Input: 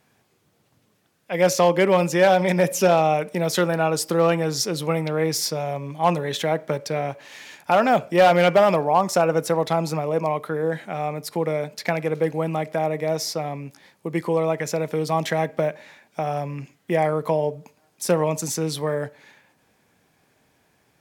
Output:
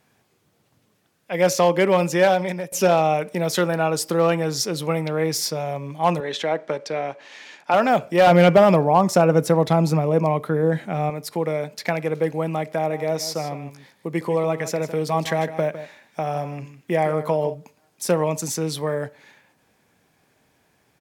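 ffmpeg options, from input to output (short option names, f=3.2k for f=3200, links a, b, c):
-filter_complex "[0:a]asettb=1/sr,asplit=3[a][b][c];[a]atrim=end=6.204[d];[b]atrim=start=6.2:end=7.74,asetpts=PTS-STARTPTS,afade=t=in:d=0.004:c=qsin,afade=t=out:st=1.536:d=0.004:c=qsin,highpass=240,lowpass=6k[e];[c]atrim=start=7.736[f];[d][e]acrossfade=d=0.004:c1=hsin:c2=qsin[g];[g][f]acrossfade=d=0.004:c1=qsin:c2=hsin,asettb=1/sr,asplit=3[h][i][j];[h]atrim=end=8.274[k];[i]atrim=start=8.27:end=11.1,asetpts=PTS-STARTPTS,afade=t=in:d=0.004:c=qsin,afade=t=out:st=2.826:d=0.004:c=qsin,lowshelf=f=310:g=10.5[l];[j]atrim=start=11.096[m];[k][l]acrossfade=d=0.004:c1=hsin:c2=qsin[n];[n][m]acrossfade=d=0.004:c1=qsin:c2=hsin,asplit=3[o][p][q];[o]afade=t=out:st=12.89:d=0.02[r];[p]aecho=1:1:156:0.237,afade=t=in:st=12.89:d=0.02,afade=t=out:st=17.53:d=0.02[s];[q]afade=t=in:st=17.53:d=0.02[t];[r][s][t]amix=inputs=3:normalize=0,asplit=2[u][v];[u]atrim=end=2.72,asetpts=PTS-STARTPTS,afade=t=out:st=2.24:d=0.48:silence=0.0891251[w];[v]atrim=start=2.72,asetpts=PTS-STARTPTS,afade=t=in:d=0.004:c=hsin:silence=0.0891251[x];[w][x]concat=n=2:v=0:a=1"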